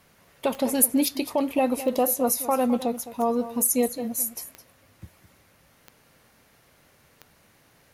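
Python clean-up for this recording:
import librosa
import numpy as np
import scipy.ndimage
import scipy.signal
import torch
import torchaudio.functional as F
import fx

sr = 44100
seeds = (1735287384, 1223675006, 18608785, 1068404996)

y = fx.fix_declick_ar(x, sr, threshold=10.0)
y = fx.fix_echo_inverse(y, sr, delay_ms=211, level_db=-14.0)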